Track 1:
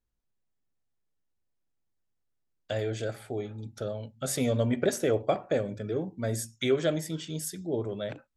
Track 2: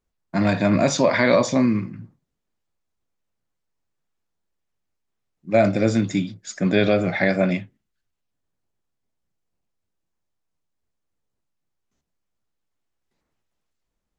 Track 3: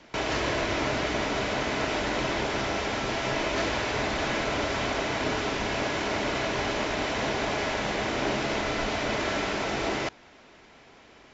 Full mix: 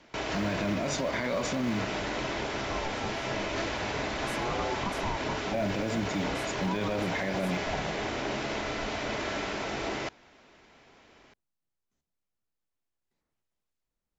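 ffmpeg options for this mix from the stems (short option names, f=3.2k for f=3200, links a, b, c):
-filter_complex "[0:a]lowshelf=f=670:t=q:w=1.5:g=7.5,aeval=exprs='val(0)*sin(2*PI*420*n/s+420*0.5/0.43*sin(2*PI*0.43*n/s))':c=same,volume=-12dB[a];[1:a]acrusher=bits=9:mode=log:mix=0:aa=0.000001,volume=-7.5dB[b];[2:a]volume=-4.5dB[c];[a][b][c]amix=inputs=3:normalize=0,alimiter=limit=-21.5dB:level=0:latency=1:release=32"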